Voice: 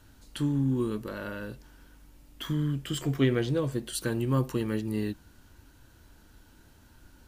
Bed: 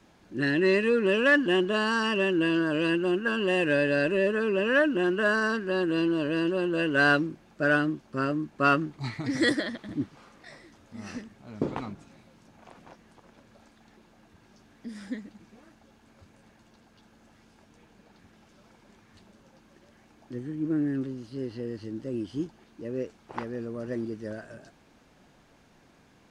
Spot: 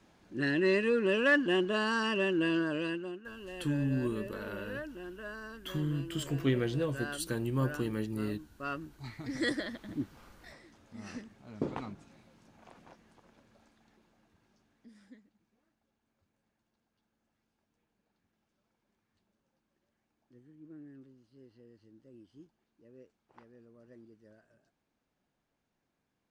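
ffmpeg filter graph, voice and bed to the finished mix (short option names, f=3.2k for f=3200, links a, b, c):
-filter_complex "[0:a]adelay=3250,volume=-4.5dB[a];[1:a]volume=9.5dB,afade=t=out:st=2.57:d=0.62:silence=0.188365,afade=t=in:st=8.52:d=1.41:silence=0.199526,afade=t=out:st=12.68:d=2.6:silence=0.125893[b];[a][b]amix=inputs=2:normalize=0"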